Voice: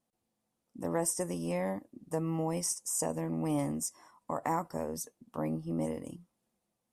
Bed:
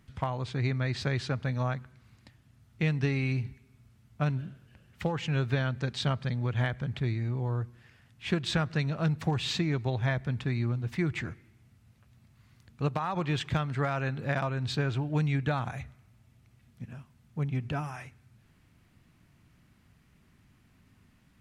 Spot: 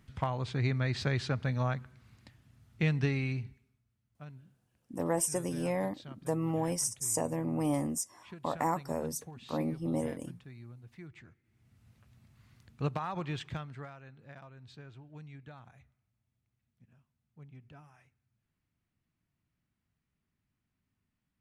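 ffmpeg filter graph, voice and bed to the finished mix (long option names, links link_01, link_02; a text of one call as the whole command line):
ffmpeg -i stem1.wav -i stem2.wav -filter_complex "[0:a]adelay=4150,volume=1dB[link_01];[1:a]volume=17dB,afade=type=out:start_time=3:duration=0.81:silence=0.11885,afade=type=in:start_time=11.43:duration=0.43:silence=0.125893,afade=type=out:start_time=12.57:duration=1.41:silence=0.105925[link_02];[link_01][link_02]amix=inputs=2:normalize=0" out.wav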